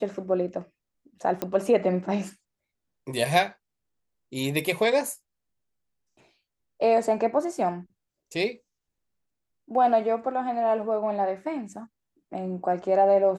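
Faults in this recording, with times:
0:01.42: click −14 dBFS

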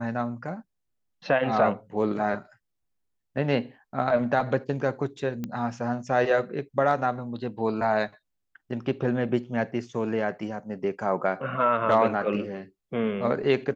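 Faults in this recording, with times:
0:05.44: click −19 dBFS

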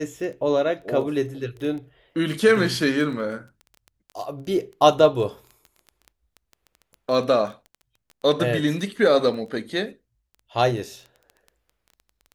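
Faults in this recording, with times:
surface crackle 11 per second −32 dBFS

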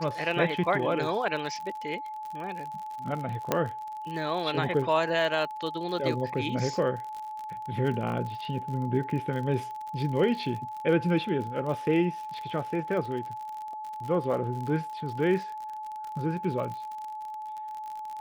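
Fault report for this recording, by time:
surface crackle 52 per second −35 dBFS
whistle 860 Hz −35 dBFS
0:03.52: click −10 dBFS

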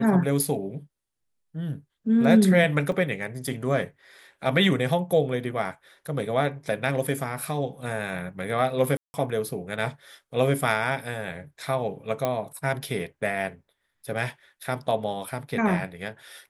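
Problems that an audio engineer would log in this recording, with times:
0:02.92: drop-out 2.5 ms
0:08.97–0:09.14: drop-out 170 ms
0:12.25: click −12 dBFS

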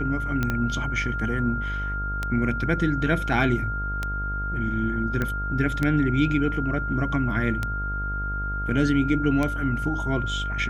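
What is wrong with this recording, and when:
mains buzz 50 Hz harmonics 20 −30 dBFS
scratch tick 33 1/3 rpm −12 dBFS
whistle 1,400 Hz −29 dBFS
0:00.50: click −13 dBFS
0:05.22: click −14 dBFS

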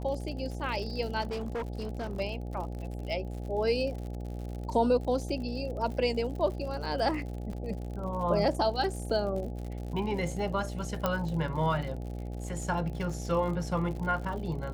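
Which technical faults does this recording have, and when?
mains buzz 60 Hz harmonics 14 −37 dBFS
surface crackle 77 per second −38 dBFS
0:01.21–0:02.21: clipping −30.5 dBFS
0:07.53: drop-out 2.8 ms
0:11.06: click −14 dBFS

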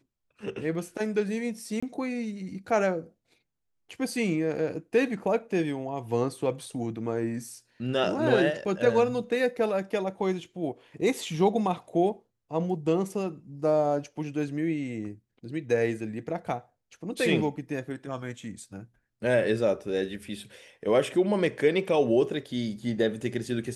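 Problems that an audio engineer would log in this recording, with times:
0:01.80–0:01.82: drop-out 25 ms

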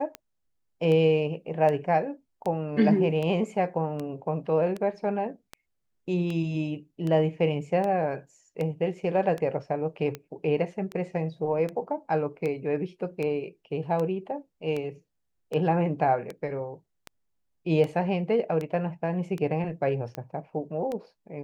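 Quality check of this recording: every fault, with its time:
scratch tick 78 rpm −20 dBFS

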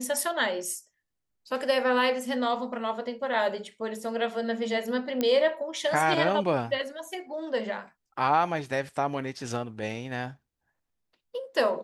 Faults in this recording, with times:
0:05.21: click −13 dBFS

